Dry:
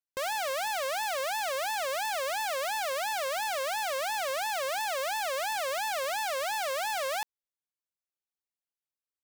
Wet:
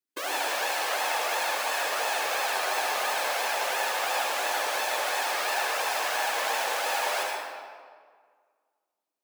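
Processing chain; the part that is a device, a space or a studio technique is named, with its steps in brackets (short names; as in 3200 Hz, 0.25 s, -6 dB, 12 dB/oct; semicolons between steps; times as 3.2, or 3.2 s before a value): resonant low shelf 370 Hz +11 dB, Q 3; whispering ghost (whisperiser; HPF 330 Hz 24 dB/oct; reverb RT60 1.9 s, pre-delay 63 ms, DRR -2.5 dB); gain +1.5 dB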